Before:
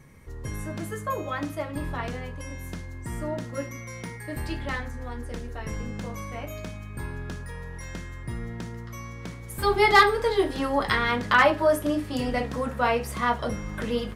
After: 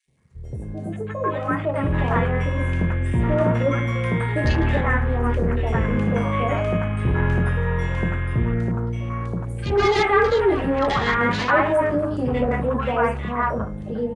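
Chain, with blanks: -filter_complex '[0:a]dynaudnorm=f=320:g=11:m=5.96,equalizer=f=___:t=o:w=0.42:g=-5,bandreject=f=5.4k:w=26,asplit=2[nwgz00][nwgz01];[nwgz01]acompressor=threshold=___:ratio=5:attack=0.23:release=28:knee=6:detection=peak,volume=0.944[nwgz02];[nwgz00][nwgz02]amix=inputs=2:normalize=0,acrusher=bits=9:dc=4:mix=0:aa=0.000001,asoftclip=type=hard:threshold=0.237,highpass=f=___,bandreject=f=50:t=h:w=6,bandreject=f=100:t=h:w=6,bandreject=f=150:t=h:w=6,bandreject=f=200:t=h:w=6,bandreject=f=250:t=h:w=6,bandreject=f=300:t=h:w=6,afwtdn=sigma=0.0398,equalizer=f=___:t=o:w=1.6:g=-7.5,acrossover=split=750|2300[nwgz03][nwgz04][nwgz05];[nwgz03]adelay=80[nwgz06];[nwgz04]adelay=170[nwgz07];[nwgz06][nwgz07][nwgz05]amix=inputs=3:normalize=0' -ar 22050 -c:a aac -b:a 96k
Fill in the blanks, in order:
290, 0.0562, 49, 5.5k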